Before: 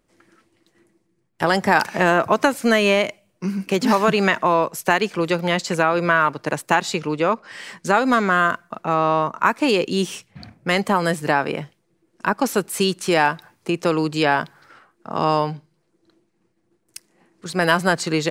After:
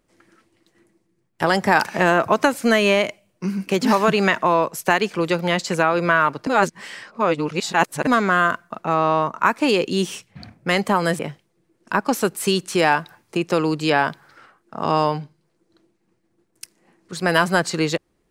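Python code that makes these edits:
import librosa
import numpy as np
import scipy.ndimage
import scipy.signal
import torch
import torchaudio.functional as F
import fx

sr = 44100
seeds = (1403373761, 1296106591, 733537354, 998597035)

y = fx.edit(x, sr, fx.reverse_span(start_s=6.47, length_s=1.6),
    fx.cut(start_s=11.19, length_s=0.33), tone=tone)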